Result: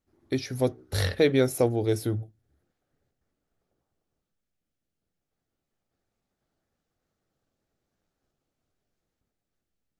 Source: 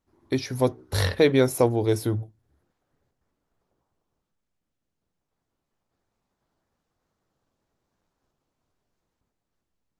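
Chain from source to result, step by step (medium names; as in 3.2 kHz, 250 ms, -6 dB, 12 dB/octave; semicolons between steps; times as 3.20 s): peaking EQ 990 Hz -10.5 dB 0.3 oct; trim -2.5 dB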